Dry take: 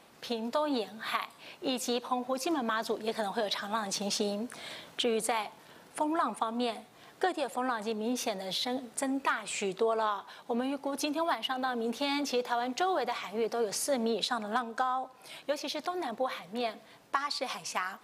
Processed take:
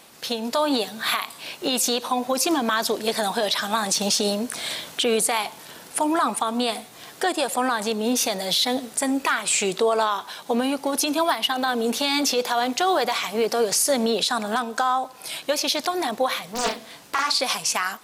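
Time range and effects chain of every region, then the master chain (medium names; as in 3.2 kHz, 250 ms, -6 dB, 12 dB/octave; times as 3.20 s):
16.52–17.41 s: hum notches 60/120/180/240/300/360/420/480/540/600 Hz + doubling 41 ms -7.5 dB + loudspeaker Doppler distortion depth 0.65 ms
whole clip: treble shelf 3.5 kHz +11.5 dB; level rider gain up to 4 dB; peak limiter -16.5 dBFS; trim +5 dB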